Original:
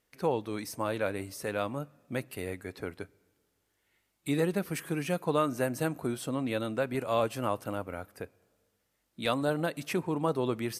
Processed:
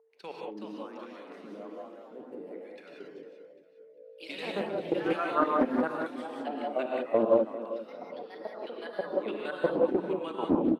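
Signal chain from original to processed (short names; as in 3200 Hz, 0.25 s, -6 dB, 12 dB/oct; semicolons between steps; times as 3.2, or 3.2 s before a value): tape stop at the end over 0.40 s; elliptic high-pass 170 Hz; low shelf 500 Hz +10.5 dB; level quantiser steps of 23 dB; whine 450 Hz -55 dBFS; LFO band-pass sine 1.2 Hz 250–3300 Hz; feedback echo 0.398 s, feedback 36%, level -13.5 dB; echoes that change speed 0.4 s, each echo +2 st, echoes 3, each echo -6 dB; non-linear reverb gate 0.21 s rising, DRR -1.5 dB; Doppler distortion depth 0.3 ms; gain +5.5 dB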